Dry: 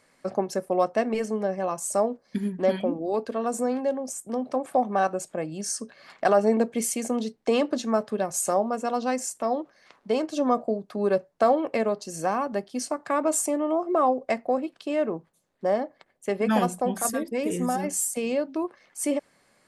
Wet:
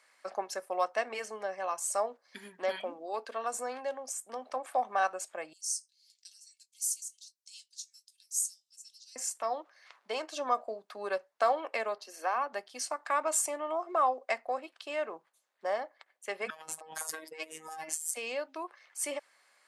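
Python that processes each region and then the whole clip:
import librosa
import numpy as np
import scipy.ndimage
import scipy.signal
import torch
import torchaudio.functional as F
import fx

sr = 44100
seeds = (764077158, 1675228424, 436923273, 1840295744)

y = fx.chain(x, sr, fx.cheby2_highpass(hz=1200.0, order=4, stop_db=70),
    fx.doubler(ms=21.0, db=-13), at=(5.53, 9.16))
y = fx.chain(y, sr, fx.steep_highpass(hz=220.0, slope=96),
    fx.peak_eq(hz=7600.0, db=-13.0, octaves=0.86), at=(11.98, 12.53))
y = fx.chain(y, sr, fx.robotise(hz=158.0),
    fx.over_compress(threshold_db=-33.0, ratio=-0.5), at=(16.5, 18.11))
y = scipy.signal.sosfilt(scipy.signal.butter(2, 940.0, 'highpass', fs=sr, output='sos'), y)
y = fx.high_shelf(y, sr, hz=6500.0, db=-4.5)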